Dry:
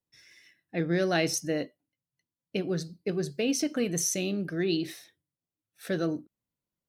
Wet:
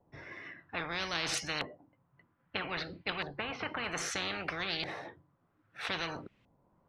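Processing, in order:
0:01.59–0:03.84: low-pass filter 3,700 Hz 24 dB per octave
auto-filter low-pass saw up 0.62 Hz 750–2,800 Hz
every bin compressed towards the loudest bin 10 to 1
level −8.5 dB

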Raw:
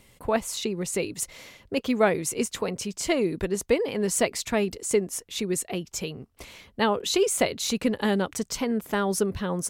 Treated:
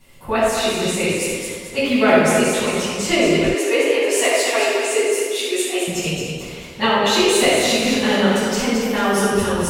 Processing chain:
low-shelf EQ 330 Hz −3 dB
feedback echo with a high-pass in the loop 219 ms, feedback 40%, high-pass 380 Hz, level −5 dB
rectangular room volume 970 cubic metres, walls mixed, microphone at 9.4 metres
dynamic equaliser 2,600 Hz, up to +5 dB, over −30 dBFS, Q 1.4
0:03.54–0:05.88: linear-phase brick-wall high-pass 260 Hz
level −6.5 dB

